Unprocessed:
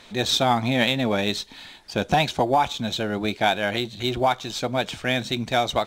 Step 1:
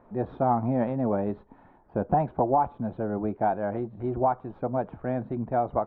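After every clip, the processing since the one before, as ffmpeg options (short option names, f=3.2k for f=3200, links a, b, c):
-af "lowpass=f=1.1k:w=0.5412,lowpass=f=1.1k:w=1.3066,volume=-2.5dB"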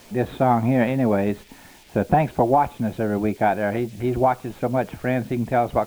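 -af "acrusher=bits=10:mix=0:aa=0.000001,highshelf=f=1.6k:t=q:w=1.5:g=12,volume=7dB"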